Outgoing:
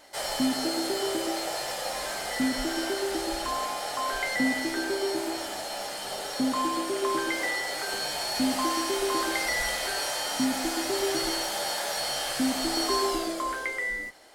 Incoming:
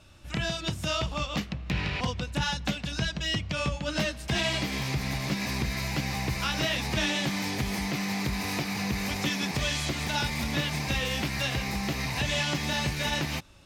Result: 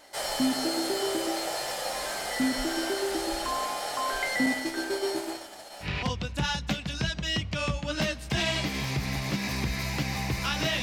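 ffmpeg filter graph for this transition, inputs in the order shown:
-filter_complex "[0:a]asettb=1/sr,asplit=3[s0][s1][s2];[s0]atrim=end=4.464[s3];[s1]atrim=start=4.46:end=5.9,asetpts=PTS-STARTPTS,afade=t=in:d=0.004:c=qsin,afade=t=out:st=1.436:d=0.004:c=qsin,agate=range=0.0224:threshold=0.0398:ratio=3:release=100:detection=peak[s4];[s2]atrim=start=5.896[s5];[s3][s4]acrossfade=d=0.004:c1=hsin:c2=qsin[s6];[s6][s5]acrossfade=d=0.004:c1=qsin:c2=hsin,apad=whole_dur=10.82,atrim=end=10.82,atrim=end=5.9,asetpts=PTS-STARTPTS[s7];[1:a]atrim=start=1.78:end=6.8,asetpts=PTS-STARTPTS[s8];[s7][s8]acrossfade=d=0.1:c1=tri:c2=tri"

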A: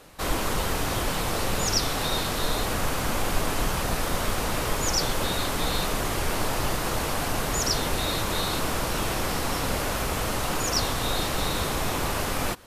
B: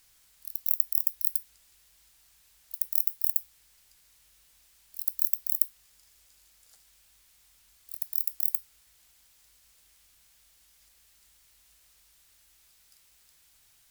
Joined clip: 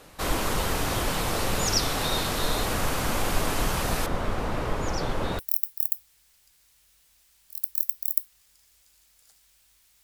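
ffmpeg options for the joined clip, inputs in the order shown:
-filter_complex "[0:a]asettb=1/sr,asplit=3[s0][s1][s2];[s0]atrim=end=4.064[s3];[s1]atrim=start=4.06:end=5.39,asetpts=PTS-STARTPTS,afade=t=in:d=0.004:c=qsin,afade=t=out:st=1.326:d=0.004:c=qsin,lowpass=f=1300:p=1[s4];[s2]atrim=start=5.386[s5];[s3][s4]acrossfade=d=0.004:c1=hsin:c2=qsin[s6];[s6][s5]acrossfade=d=0.004:c1=qsin:c2=hsin,apad=whole_dur=10.03,atrim=end=10.03,atrim=end=5.392[s7];[1:a]atrim=start=2.828:end=7.47[s8];[s7][s8]acrossfade=d=0.004:c1=hsin:c2=hsin"

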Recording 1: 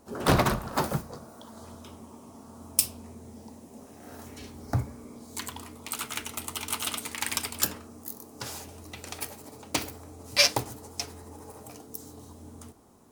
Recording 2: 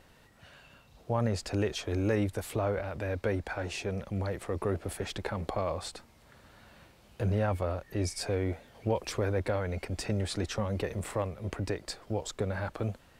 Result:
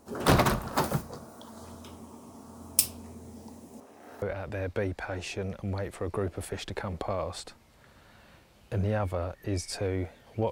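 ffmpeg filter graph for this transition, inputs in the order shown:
-filter_complex "[0:a]asettb=1/sr,asplit=3[s0][s1][s2];[s0]atrim=end=3.804[s3];[s1]atrim=start=3.8:end=4.22,asetpts=PTS-STARTPTS,afade=t=in:d=0.004:c=qsin,afade=t=out:st=0.416:d=0.004:c=qsin,bass=f=250:g=-13,treble=f=4000:g=-9[s4];[s2]atrim=start=4.216[s5];[s3][s4]acrossfade=d=0.004:c1=hsin:c2=qsin[s6];[s6][s5]acrossfade=d=0.004:c1=qsin:c2=hsin,apad=whole_dur=10.51,atrim=end=10.51,atrim=end=4.222[s7];[1:a]atrim=start=2.698:end=8.99[s8];[s7][s8]acrossfade=d=0.004:c1=hsin:c2=hsin"

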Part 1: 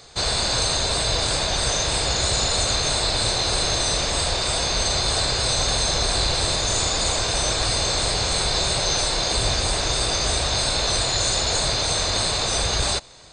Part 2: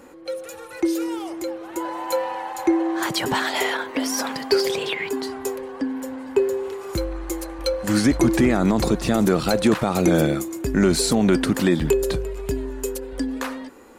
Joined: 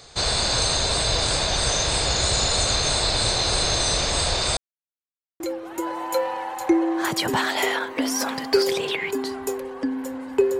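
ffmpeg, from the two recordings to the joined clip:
-filter_complex "[0:a]apad=whole_dur=10.59,atrim=end=10.59,asplit=2[s0][s1];[s0]atrim=end=4.57,asetpts=PTS-STARTPTS,afade=t=out:st=4.566:d=0.004:c=hsin[s2];[s1]atrim=start=4.57:end=5.4,asetpts=PTS-STARTPTS,volume=0[s3];[1:a]atrim=start=1.38:end=6.57,asetpts=PTS-STARTPTS,afade=t=in:d=0.004:c=hsin[s4];[s2][s3][s4]concat=n=3:v=0:a=1"

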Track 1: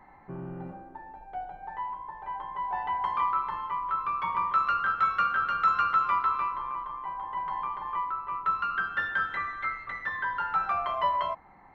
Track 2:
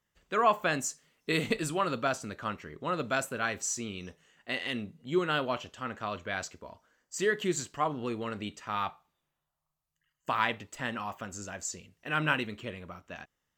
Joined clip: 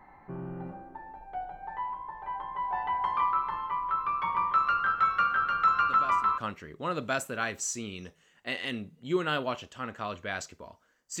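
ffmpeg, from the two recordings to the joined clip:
-filter_complex "[1:a]asplit=2[s0][s1];[0:a]apad=whole_dur=11.2,atrim=end=11.2,atrim=end=6.382[s2];[s1]atrim=start=2.398:end=7.22[s3];[s0]atrim=start=1.91:end=2.4,asetpts=PTS-STARTPTS,volume=0.251,afade=t=in:d=0.004:c=hsin,afade=t=out:st=0.486:d=0.004:c=hsin,adelay=259749S[s4];[s2][s3]acrossfade=d=0.004:c1=hsin:c2=hsin[s5];[s5][s4]amix=inputs=2:normalize=0"

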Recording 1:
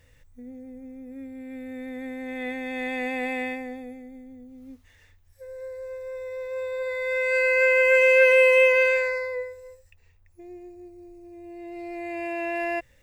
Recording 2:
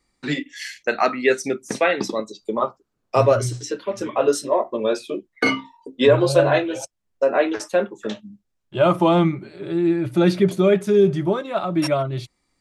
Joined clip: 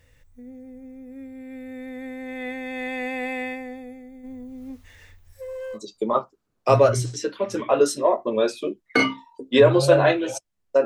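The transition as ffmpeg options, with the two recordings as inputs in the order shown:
-filter_complex "[0:a]asplit=3[s0][s1][s2];[s0]afade=t=out:st=4.23:d=0.02[s3];[s1]aeval=exprs='0.0299*sin(PI/2*1.58*val(0)/0.0299)':c=same,afade=t=in:st=4.23:d=0.02,afade=t=out:st=5.79:d=0.02[s4];[s2]afade=t=in:st=5.79:d=0.02[s5];[s3][s4][s5]amix=inputs=3:normalize=0,apad=whole_dur=10.85,atrim=end=10.85,atrim=end=5.79,asetpts=PTS-STARTPTS[s6];[1:a]atrim=start=2.2:end=7.32,asetpts=PTS-STARTPTS[s7];[s6][s7]acrossfade=d=0.06:c1=tri:c2=tri"

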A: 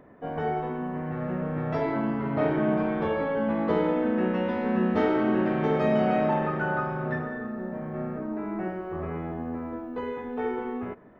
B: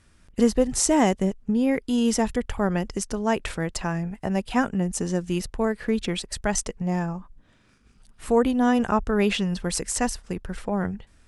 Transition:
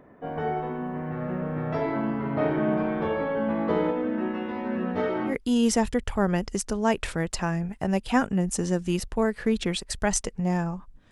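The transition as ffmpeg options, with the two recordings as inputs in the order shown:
-filter_complex "[0:a]asplit=3[s0][s1][s2];[s0]afade=t=out:st=3.9:d=0.02[s3];[s1]flanger=delay=19:depth=3.3:speed=0.45,afade=t=in:st=3.9:d=0.02,afade=t=out:st=5.36:d=0.02[s4];[s2]afade=t=in:st=5.36:d=0.02[s5];[s3][s4][s5]amix=inputs=3:normalize=0,apad=whole_dur=11.11,atrim=end=11.11,atrim=end=5.36,asetpts=PTS-STARTPTS[s6];[1:a]atrim=start=1.68:end=7.53,asetpts=PTS-STARTPTS[s7];[s6][s7]acrossfade=d=0.1:c1=tri:c2=tri"

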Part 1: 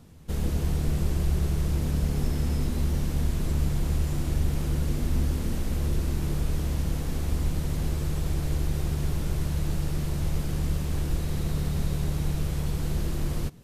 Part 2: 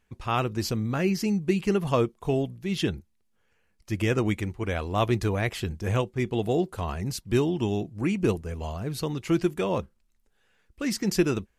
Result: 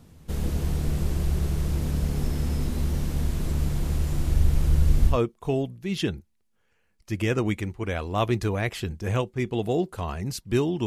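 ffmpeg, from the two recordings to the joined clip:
-filter_complex "[0:a]asettb=1/sr,asplit=3[s0][s1][s2];[s0]atrim=end=3.964[s3];[s1]atrim=start=3.96:end=5.18,asetpts=PTS-STARTPTS,afade=t=in:d=0.004:c=qsin,afade=t=out:st=1.216:d=0.004:c=qsin,asubboost=boost=7.5:cutoff=130[s4];[s2]atrim=start=5.176[s5];[s3][s4]acrossfade=d=0.004:c1=hsin:c2=qsin[s6];[s6][s5]acrossfade=d=0.004:c1=qsin:c2=hsin,apad=whole_dur=10.86,atrim=end=10.86,atrim=end=5.18,asetpts=PTS-STARTPTS[s7];[1:a]atrim=start=1.86:end=7.66,asetpts=PTS-STARTPTS[s8];[s7][s8]acrossfade=d=0.12:c1=tri:c2=tri"

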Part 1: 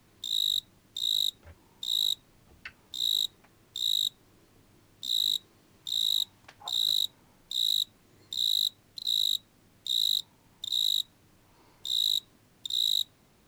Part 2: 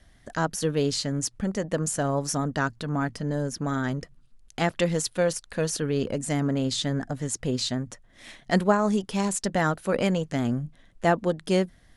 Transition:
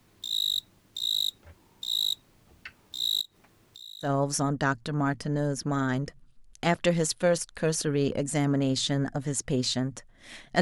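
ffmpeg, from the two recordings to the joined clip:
-filter_complex "[0:a]asettb=1/sr,asplit=3[s0][s1][s2];[s0]atrim=end=3.214[s3];[s1]atrim=start=3.21:end=4.1,asetpts=PTS-STARTPTS,afade=t=in:d=0.004:c=qsin,afade=t=out:st=0.886:d=0.004:c=qsin,acompressor=threshold=0.00398:ratio=3:attack=3.2:release=140:knee=1:detection=peak[s4];[s2]atrim=start=4.096[s5];[s3][s4]acrossfade=d=0.004:c1=hsin:c2=qsin[s6];[s6][s5]acrossfade=d=0.004:c1=qsin:c2=hsin,apad=whole_dur=10.61,atrim=end=10.61,atrim=end=4.1,asetpts=PTS-STARTPTS[s7];[1:a]atrim=start=1.95:end=8.56,asetpts=PTS-STARTPTS[s8];[s7][s8]acrossfade=d=0.1:c1=tri:c2=tri"

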